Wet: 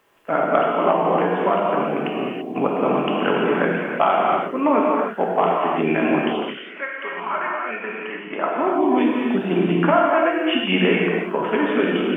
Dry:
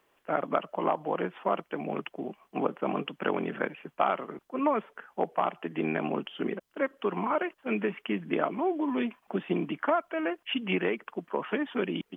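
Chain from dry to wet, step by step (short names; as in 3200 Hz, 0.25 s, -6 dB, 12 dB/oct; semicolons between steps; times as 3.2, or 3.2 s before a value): 6.26–8.57 band-pass 2800 Hz -> 940 Hz, Q 1.2; non-linear reverb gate 0.36 s flat, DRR -3.5 dB; gain +6.5 dB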